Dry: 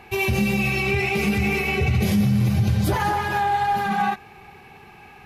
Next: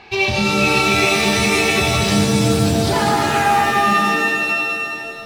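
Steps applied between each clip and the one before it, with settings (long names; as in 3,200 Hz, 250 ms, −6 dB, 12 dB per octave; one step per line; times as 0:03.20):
bass and treble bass −5 dB, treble +3 dB
low-pass filter sweep 4,500 Hz → 310 Hz, 0:03.27–0:03.80
reverb with rising layers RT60 2.7 s, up +7 semitones, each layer −2 dB, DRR 3.5 dB
level +2 dB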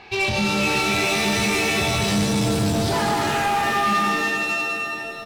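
soft clipping −15 dBFS, distortion −12 dB
double-tracking delay 19 ms −13.5 dB
level −1.5 dB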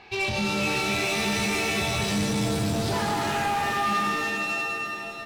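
delay that swaps between a low-pass and a high-pass 298 ms, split 2,200 Hz, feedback 68%, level −12 dB
level −5 dB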